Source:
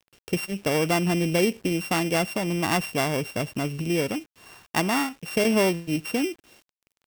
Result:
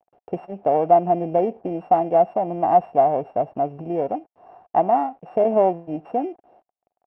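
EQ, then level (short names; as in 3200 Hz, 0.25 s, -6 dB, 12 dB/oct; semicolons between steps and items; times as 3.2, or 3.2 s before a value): synth low-pass 730 Hz, resonance Q 7.2; low shelf 210 Hz -11 dB; 0.0 dB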